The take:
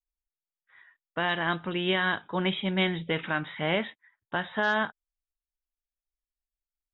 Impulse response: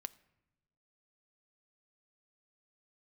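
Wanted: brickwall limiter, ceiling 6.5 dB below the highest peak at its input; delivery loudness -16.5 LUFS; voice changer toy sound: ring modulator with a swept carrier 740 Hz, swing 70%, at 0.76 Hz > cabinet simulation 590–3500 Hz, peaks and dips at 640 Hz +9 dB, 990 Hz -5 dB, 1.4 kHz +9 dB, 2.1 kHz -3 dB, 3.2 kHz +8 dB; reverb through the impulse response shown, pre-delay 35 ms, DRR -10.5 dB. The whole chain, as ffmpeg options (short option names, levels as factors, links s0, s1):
-filter_complex "[0:a]alimiter=limit=0.0944:level=0:latency=1,asplit=2[s0][s1];[1:a]atrim=start_sample=2205,adelay=35[s2];[s1][s2]afir=irnorm=-1:irlink=0,volume=5.01[s3];[s0][s3]amix=inputs=2:normalize=0,aeval=exprs='val(0)*sin(2*PI*740*n/s+740*0.7/0.76*sin(2*PI*0.76*n/s))':c=same,highpass=590,equalizer=f=640:t=q:w=4:g=9,equalizer=f=990:t=q:w=4:g=-5,equalizer=f=1400:t=q:w=4:g=9,equalizer=f=2100:t=q:w=4:g=-3,equalizer=f=3200:t=q:w=4:g=8,lowpass=f=3500:w=0.5412,lowpass=f=3500:w=1.3066,volume=1.78"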